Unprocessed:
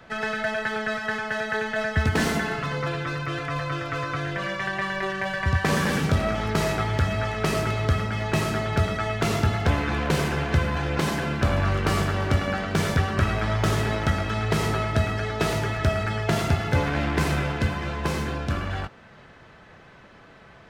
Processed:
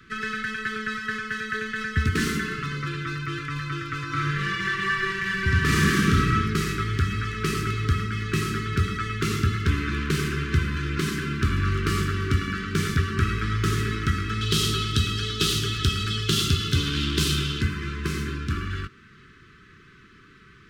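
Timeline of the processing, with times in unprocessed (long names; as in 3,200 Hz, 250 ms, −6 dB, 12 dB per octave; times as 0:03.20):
0:04.06–0:06.31: thrown reverb, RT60 0.99 s, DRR −3.5 dB
0:14.41–0:17.61: high shelf with overshoot 2,600 Hz +7.5 dB, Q 3
whole clip: elliptic band-stop filter 400–1,200 Hz, stop band 50 dB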